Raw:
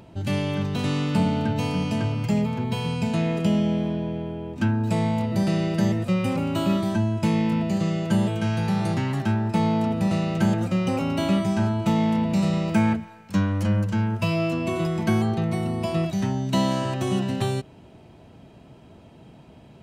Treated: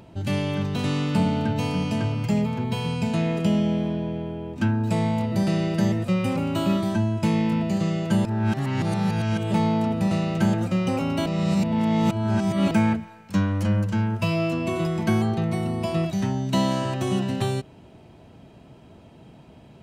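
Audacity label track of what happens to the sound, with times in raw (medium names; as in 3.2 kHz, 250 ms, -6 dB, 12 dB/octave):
8.250000	9.540000	reverse
11.260000	12.710000	reverse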